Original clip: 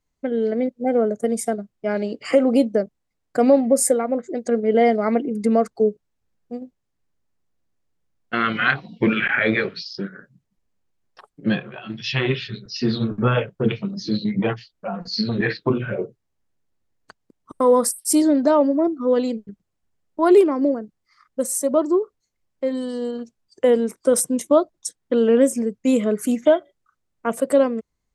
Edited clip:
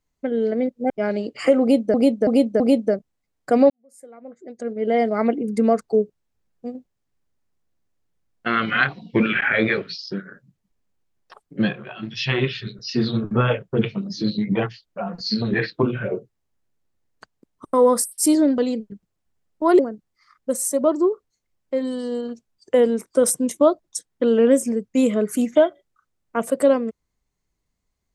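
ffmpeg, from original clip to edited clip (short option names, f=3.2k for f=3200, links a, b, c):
-filter_complex "[0:a]asplit=8[a][b][c][d][e][f][g][h];[a]atrim=end=0.902[i];[b]atrim=start=1.758:end=2.802[j];[c]atrim=start=2.468:end=2.802[k];[d]atrim=start=2.468:end=2.802[l];[e]atrim=start=2.468:end=3.57,asetpts=PTS-STARTPTS,afade=t=out:st=1.098:d=0.004:c=hsin[m];[f]atrim=start=3.57:end=18.452,asetpts=PTS-STARTPTS,afade=t=in:d=1.52:c=qua[n];[g]atrim=start=19.148:end=20.362[o];[h]atrim=start=20.688[p];[i][j]acrossfade=d=0.004:c1=hsin:c2=hsin[q];[q][k]acrossfade=d=0.004:c1=hsin:c2=hsin[r];[r][l]acrossfade=d=0.004:c1=hsin:c2=hsin[s];[m][n]concat=n=2:v=0:a=1[t];[s][t]acrossfade=d=0.004:c1=hsin:c2=hsin[u];[u][o]acrossfade=d=0.004:c1=hsin:c2=hsin[v];[v][p]acrossfade=d=0.004:c1=hsin:c2=hsin"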